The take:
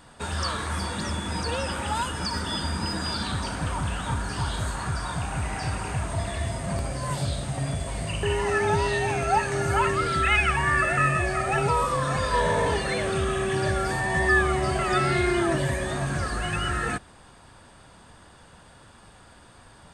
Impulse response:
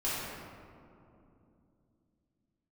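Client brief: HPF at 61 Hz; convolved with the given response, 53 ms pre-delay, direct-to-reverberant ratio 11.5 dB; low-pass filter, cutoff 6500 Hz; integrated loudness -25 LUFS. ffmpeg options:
-filter_complex "[0:a]highpass=61,lowpass=6.5k,asplit=2[a][b];[1:a]atrim=start_sample=2205,adelay=53[c];[b][c]afir=irnorm=-1:irlink=0,volume=-19.5dB[d];[a][d]amix=inputs=2:normalize=0,volume=1dB"

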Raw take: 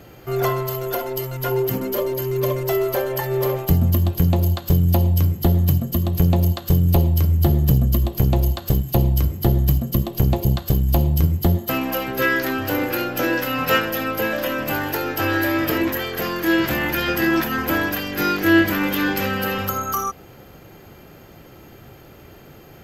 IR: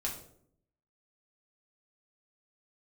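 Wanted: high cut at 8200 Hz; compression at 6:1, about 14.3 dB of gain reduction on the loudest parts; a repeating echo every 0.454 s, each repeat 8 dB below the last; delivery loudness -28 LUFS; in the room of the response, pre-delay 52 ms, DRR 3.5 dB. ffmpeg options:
-filter_complex "[0:a]lowpass=8.2k,acompressor=threshold=-28dB:ratio=6,aecho=1:1:454|908|1362|1816|2270:0.398|0.159|0.0637|0.0255|0.0102,asplit=2[a][b];[1:a]atrim=start_sample=2205,adelay=52[c];[b][c]afir=irnorm=-1:irlink=0,volume=-6dB[d];[a][d]amix=inputs=2:normalize=0,volume=0.5dB"

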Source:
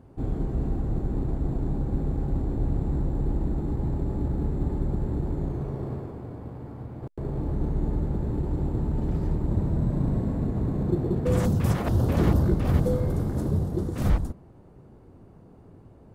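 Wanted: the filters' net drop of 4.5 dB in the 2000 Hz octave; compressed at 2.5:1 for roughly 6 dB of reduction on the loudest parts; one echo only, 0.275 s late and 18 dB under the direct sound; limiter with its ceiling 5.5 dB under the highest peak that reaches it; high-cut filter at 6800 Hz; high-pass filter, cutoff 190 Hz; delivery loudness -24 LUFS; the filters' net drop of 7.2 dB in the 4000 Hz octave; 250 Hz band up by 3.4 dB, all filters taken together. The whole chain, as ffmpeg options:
-af "highpass=190,lowpass=6.8k,equalizer=f=250:t=o:g=7,equalizer=f=2k:t=o:g=-4.5,equalizer=f=4k:t=o:g=-7.5,acompressor=threshold=-27dB:ratio=2.5,alimiter=limit=-22dB:level=0:latency=1,aecho=1:1:275:0.126,volume=8dB"

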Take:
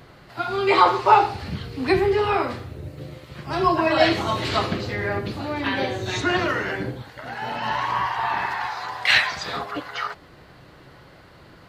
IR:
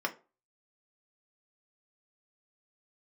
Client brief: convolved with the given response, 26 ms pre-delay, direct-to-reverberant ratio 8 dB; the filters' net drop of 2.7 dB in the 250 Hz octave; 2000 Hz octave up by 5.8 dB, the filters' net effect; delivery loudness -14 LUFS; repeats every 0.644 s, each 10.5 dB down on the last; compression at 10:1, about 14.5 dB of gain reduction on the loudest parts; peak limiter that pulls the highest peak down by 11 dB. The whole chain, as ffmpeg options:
-filter_complex "[0:a]equalizer=f=250:t=o:g=-4.5,equalizer=f=2k:t=o:g=7,acompressor=threshold=-23dB:ratio=10,alimiter=limit=-20dB:level=0:latency=1,aecho=1:1:644|1288|1932:0.299|0.0896|0.0269,asplit=2[a][b];[1:a]atrim=start_sample=2205,adelay=26[c];[b][c]afir=irnorm=-1:irlink=0,volume=-14.5dB[d];[a][d]amix=inputs=2:normalize=0,volume=15dB"

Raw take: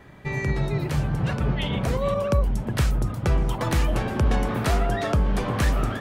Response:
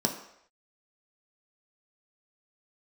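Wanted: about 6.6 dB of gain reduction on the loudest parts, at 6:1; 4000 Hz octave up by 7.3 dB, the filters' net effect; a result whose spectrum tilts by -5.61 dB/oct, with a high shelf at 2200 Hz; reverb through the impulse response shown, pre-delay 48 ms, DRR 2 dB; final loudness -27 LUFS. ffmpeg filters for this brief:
-filter_complex "[0:a]highshelf=f=2.2k:g=6.5,equalizer=f=4k:t=o:g=3.5,acompressor=threshold=-23dB:ratio=6,asplit=2[a][b];[1:a]atrim=start_sample=2205,adelay=48[c];[b][c]afir=irnorm=-1:irlink=0,volume=-10dB[d];[a][d]amix=inputs=2:normalize=0,volume=-3dB"

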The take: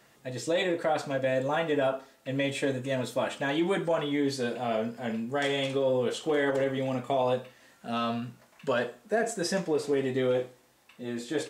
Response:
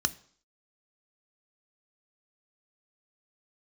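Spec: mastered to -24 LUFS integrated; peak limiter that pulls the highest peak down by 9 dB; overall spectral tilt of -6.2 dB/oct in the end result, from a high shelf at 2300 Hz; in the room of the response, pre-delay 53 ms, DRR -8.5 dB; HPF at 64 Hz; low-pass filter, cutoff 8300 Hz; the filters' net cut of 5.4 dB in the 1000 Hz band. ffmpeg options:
-filter_complex "[0:a]highpass=64,lowpass=8.3k,equalizer=f=1k:t=o:g=-7,highshelf=f=2.3k:g=-8,alimiter=level_in=3dB:limit=-24dB:level=0:latency=1,volume=-3dB,asplit=2[a][b];[1:a]atrim=start_sample=2205,adelay=53[c];[b][c]afir=irnorm=-1:irlink=0,volume=2.5dB[d];[a][d]amix=inputs=2:normalize=0,volume=2.5dB"

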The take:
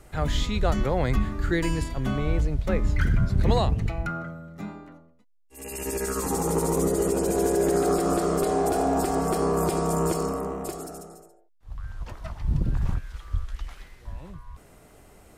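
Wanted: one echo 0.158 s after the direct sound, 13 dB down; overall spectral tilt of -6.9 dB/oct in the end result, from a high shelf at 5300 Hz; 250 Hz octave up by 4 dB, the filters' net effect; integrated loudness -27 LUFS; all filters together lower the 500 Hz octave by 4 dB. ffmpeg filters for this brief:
-af "equalizer=f=250:t=o:g=8.5,equalizer=f=500:t=o:g=-9,highshelf=f=5.3k:g=-8.5,aecho=1:1:158:0.224,volume=-1.5dB"

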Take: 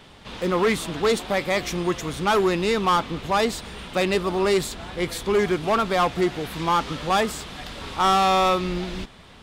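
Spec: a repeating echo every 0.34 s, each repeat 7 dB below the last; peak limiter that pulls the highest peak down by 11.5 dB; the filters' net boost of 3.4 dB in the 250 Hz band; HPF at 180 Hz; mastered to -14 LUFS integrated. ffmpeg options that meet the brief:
-af "highpass=180,equalizer=f=250:t=o:g=7.5,alimiter=limit=-21dB:level=0:latency=1,aecho=1:1:340|680|1020|1360|1700:0.447|0.201|0.0905|0.0407|0.0183,volume=15dB"

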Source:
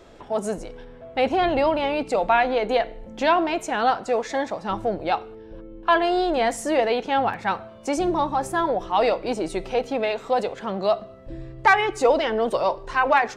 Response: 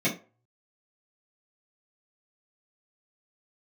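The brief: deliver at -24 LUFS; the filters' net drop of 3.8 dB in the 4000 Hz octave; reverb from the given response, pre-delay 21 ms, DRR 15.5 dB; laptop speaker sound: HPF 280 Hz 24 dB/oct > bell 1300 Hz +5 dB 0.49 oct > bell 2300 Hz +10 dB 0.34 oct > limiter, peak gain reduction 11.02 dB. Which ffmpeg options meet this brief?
-filter_complex "[0:a]equalizer=f=4k:t=o:g=-8,asplit=2[a][b];[1:a]atrim=start_sample=2205,adelay=21[c];[b][c]afir=irnorm=-1:irlink=0,volume=-27.5dB[d];[a][d]amix=inputs=2:normalize=0,highpass=f=280:w=0.5412,highpass=f=280:w=1.3066,equalizer=f=1.3k:t=o:w=0.49:g=5,equalizer=f=2.3k:t=o:w=0.34:g=10,volume=0.5dB,alimiter=limit=-12.5dB:level=0:latency=1"

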